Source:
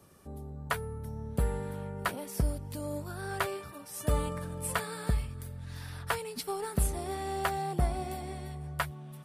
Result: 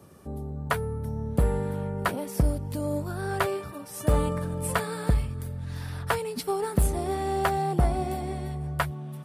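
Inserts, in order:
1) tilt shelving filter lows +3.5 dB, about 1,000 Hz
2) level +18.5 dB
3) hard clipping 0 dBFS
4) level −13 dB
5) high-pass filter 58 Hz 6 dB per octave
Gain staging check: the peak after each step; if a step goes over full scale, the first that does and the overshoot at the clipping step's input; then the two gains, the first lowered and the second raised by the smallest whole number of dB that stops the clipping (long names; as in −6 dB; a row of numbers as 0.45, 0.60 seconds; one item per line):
−13.0, +5.5, 0.0, −13.0, −11.0 dBFS
step 2, 5.5 dB
step 2 +12.5 dB, step 4 −7 dB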